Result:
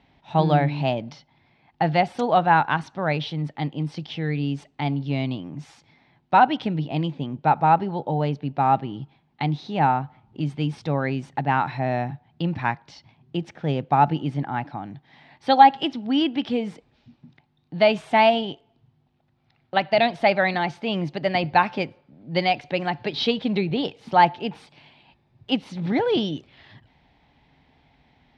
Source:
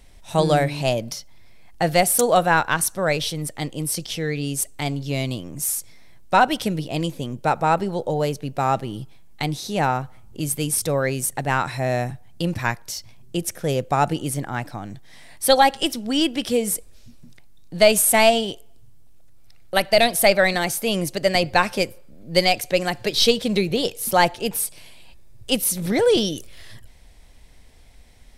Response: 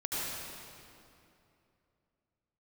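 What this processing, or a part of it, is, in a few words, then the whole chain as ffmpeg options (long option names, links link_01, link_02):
guitar cabinet: -af "highpass=100,equalizer=frequency=150:width_type=q:width=4:gain=7,equalizer=frequency=270:width_type=q:width=4:gain=6,equalizer=frequency=510:width_type=q:width=4:gain=-5,equalizer=frequency=840:width_type=q:width=4:gain=9,lowpass=frequency=3700:width=0.5412,lowpass=frequency=3700:width=1.3066,volume=-3.5dB"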